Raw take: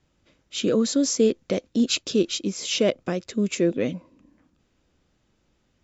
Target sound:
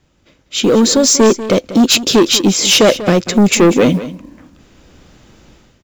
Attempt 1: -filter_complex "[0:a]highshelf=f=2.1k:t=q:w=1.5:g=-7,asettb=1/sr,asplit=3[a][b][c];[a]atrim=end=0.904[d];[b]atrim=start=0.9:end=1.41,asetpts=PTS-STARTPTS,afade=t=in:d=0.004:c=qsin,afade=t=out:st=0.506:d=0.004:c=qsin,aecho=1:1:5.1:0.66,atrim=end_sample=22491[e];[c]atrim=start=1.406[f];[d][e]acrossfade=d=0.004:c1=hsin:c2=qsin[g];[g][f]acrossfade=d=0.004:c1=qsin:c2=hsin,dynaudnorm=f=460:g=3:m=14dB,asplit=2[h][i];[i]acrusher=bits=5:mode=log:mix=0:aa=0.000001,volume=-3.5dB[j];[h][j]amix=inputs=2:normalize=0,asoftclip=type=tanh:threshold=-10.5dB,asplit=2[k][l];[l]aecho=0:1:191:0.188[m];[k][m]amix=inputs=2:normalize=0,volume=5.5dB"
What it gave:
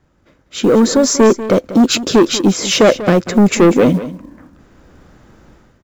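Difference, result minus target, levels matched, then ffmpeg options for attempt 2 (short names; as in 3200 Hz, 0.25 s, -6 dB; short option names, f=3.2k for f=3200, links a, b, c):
4000 Hz band -5.0 dB
-filter_complex "[0:a]asettb=1/sr,asplit=3[a][b][c];[a]atrim=end=0.904[d];[b]atrim=start=0.9:end=1.41,asetpts=PTS-STARTPTS,afade=t=in:d=0.004:c=qsin,afade=t=out:st=0.506:d=0.004:c=qsin,aecho=1:1:5.1:0.66,atrim=end_sample=22491[e];[c]atrim=start=1.406[f];[d][e]acrossfade=d=0.004:c1=hsin:c2=qsin[g];[g][f]acrossfade=d=0.004:c1=qsin:c2=hsin,dynaudnorm=f=460:g=3:m=14dB,asplit=2[h][i];[i]acrusher=bits=5:mode=log:mix=0:aa=0.000001,volume=-3.5dB[j];[h][j]amix=inputs=2:normalize=0,asoftclip=type=tanh:threshold=-10.5dB,asplit=2[k][l];[l]aecho=0:1:191:0.188[m];[k][m]amix=inputs=2:normalize=0,volume=5.5dB"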